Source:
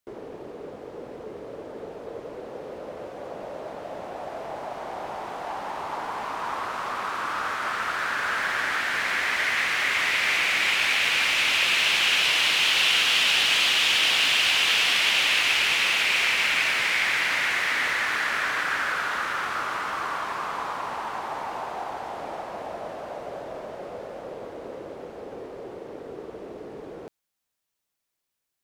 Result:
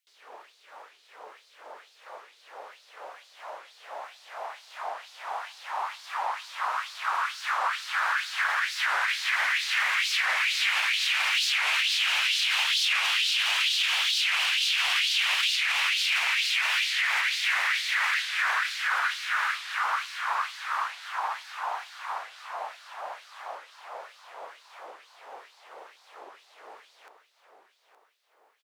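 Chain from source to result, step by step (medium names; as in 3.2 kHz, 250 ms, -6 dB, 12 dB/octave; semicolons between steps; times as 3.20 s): LFO high-pass sine 2.2 Hz 800–4400 Hz; bass shelf 440 Hz -5.5 dB; peak limiter -15 dBFS, peak gain reduction 10.5 dB; feedback delay 868 ms, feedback 46%, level -11 dB; warped record 45 rpm, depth 250 cents; trim -2 dB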